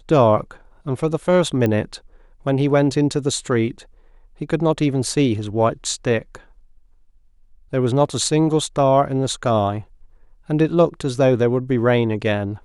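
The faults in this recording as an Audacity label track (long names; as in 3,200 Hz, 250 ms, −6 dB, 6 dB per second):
1.660000	1.660000	click −10 dBFS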